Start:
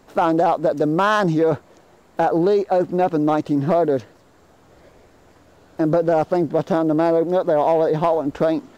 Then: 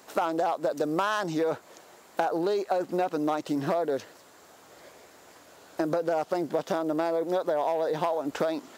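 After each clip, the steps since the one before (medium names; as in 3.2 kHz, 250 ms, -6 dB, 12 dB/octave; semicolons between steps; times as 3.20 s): high-pass 610 Hz 6 dB/octave; treble shelf 5.6 kHz +8.5 dB; compression, threshold -26 dBFS, peak gain reduction 11.5 dB; trim +2 dB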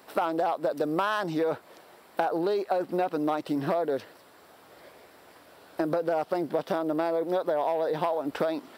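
peaking EQ 6.7 kHz -15 dB 0.37 oct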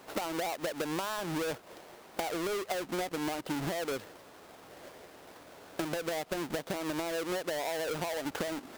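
square wave that keeps the level; compression 5:1, threshold -29 dBFS, peak gain reduction 10 dB; trim -3.5 dB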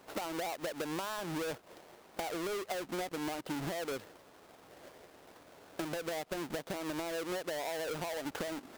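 waveshaping leveller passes 1; trim -7 dB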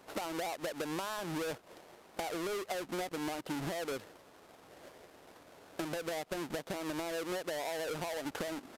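resampled via 32 kHz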